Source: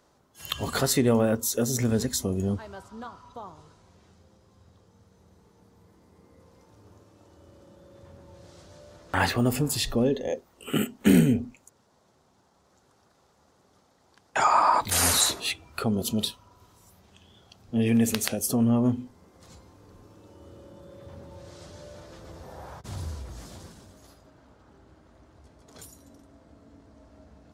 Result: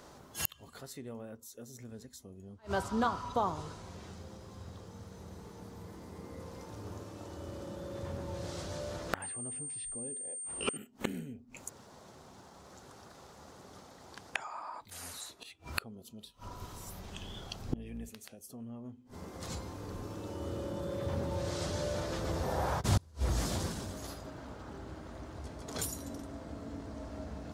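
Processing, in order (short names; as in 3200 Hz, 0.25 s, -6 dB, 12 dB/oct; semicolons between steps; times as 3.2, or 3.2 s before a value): 16.23–18.09 octaver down 2 oct, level -2 dB; flipped gate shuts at -27 dBFS, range -33 dB; 9.22–10.77 pulse-width modulation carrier 8700 Hz; gain +10 dB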